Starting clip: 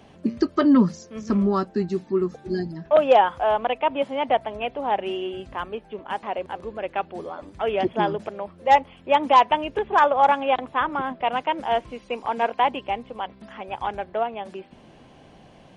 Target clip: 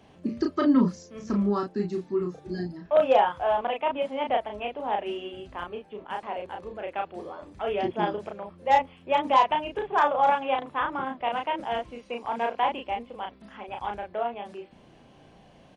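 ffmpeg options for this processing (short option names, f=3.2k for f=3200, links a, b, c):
-filter_complex "[0:a]asplit=2[a][b];[b]adelay=34,volume=-3.5dB[c];[a][c]amix=inputs=2:normalize=0,volume=-6dB"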